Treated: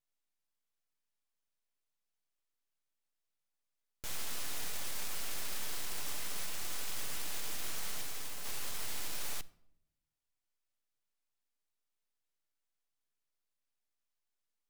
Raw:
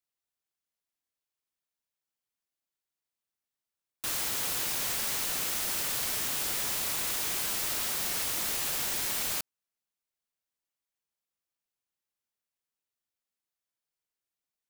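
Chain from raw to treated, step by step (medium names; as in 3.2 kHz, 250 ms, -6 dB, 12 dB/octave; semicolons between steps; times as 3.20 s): low-pass 11 kHz 12 dB/octave; peak limiter -31.5 dBFS, peak gain reduction 9 dB; 8.01–8.44 s: peaking EQ 4 kHz -2 dB -> -8.5 dB 2.4 oct; full-wave rectifier; reverberation RT60 0.80 s, pre-delay 7 ms, DRR 15 dB; trim +3 dB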